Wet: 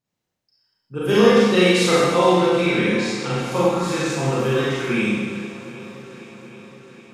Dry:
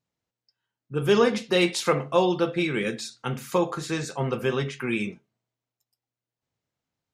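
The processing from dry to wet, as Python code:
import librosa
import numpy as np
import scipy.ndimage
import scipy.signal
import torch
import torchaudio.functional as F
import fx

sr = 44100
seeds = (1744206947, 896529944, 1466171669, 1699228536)

p1 = fx.lowpass(x, sr, hz=7500.0, slope=12, at=(2.62, 3.52))
p2 = p1 + fx.echo_swing(p1, sr, ms=770, ratio=1.5, feedback_pct=57, wet_db=-16.5, dry=0)
p3 = fx.rev_schroeder(p2, sr, rt60_s=1.5, comb_ms=30, drr_db=-8.0)
y = p3 * librosa.db_to_amplitude(-2.0)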